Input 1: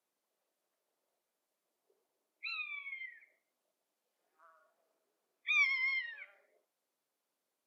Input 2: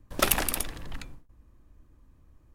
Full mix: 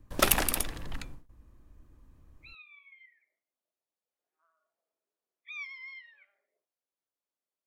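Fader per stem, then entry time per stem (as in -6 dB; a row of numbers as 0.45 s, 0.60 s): -11.0 dB, 0.0 dB; 0.00 s, 0.00 s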